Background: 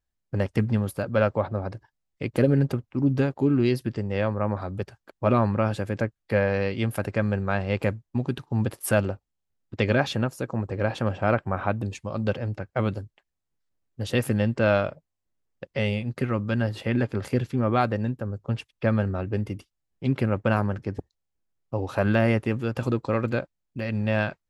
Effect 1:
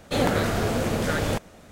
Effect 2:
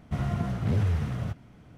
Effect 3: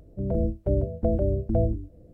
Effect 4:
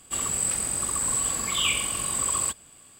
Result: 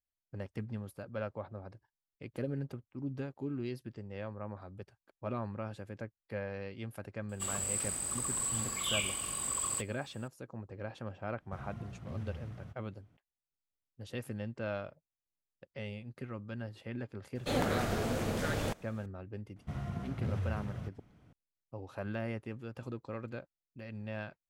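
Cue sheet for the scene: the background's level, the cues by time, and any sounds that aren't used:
background -16.5 dB
7.29 s: add 4 -9 dB
11.40 s: add 2 -17 dB
17.35 s: add 1 -9 dB
19.56 s: add 2 -10 dB
not used: 3

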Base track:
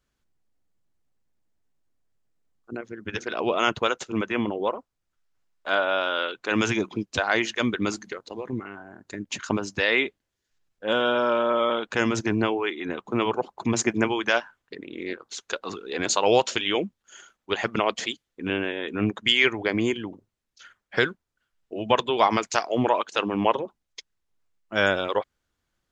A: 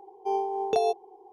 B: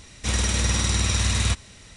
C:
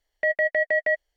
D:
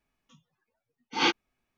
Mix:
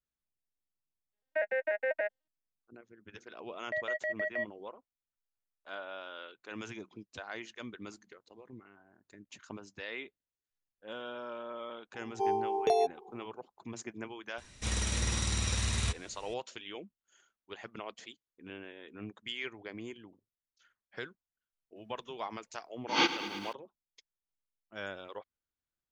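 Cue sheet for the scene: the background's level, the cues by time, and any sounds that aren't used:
base track -19.5 dB
1.12 s: add C -8 dB + vocoder on a broken chord major triad, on G#3, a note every 98 ms
3.49 s: add C -12 dB
11.94 s: add A -2.5 dB
14.38 s: add B -9.5 dB
21.76 s: add D -2.5 dB + bit-crushed delay 109 ms, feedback 80%, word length 9-bit, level -12 dB

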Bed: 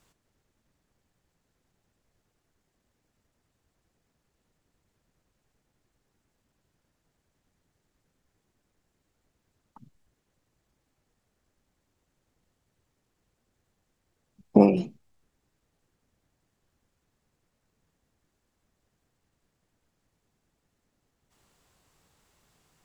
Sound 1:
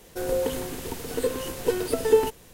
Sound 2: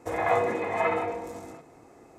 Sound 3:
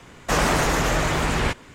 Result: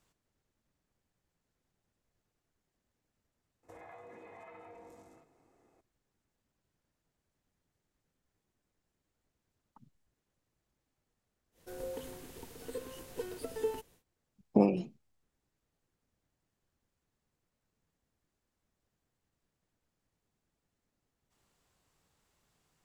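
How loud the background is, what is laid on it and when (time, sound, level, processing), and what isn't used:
bed -8 dB
3.63 s: add 2 -17 dB + compression 12:1, threshold -31 dBFS
11.51 s: add 1 -15.5 dB, fades 0.10 s
not used: 3

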